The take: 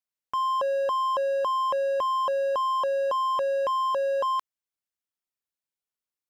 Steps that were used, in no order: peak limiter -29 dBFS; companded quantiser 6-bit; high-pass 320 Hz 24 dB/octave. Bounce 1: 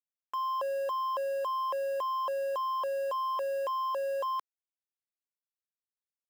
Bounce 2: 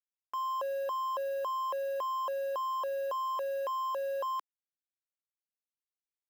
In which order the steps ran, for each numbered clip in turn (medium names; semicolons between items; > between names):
high-pass > peak limiter > companded quantiser; peak limiter > companded quantiser > high-pass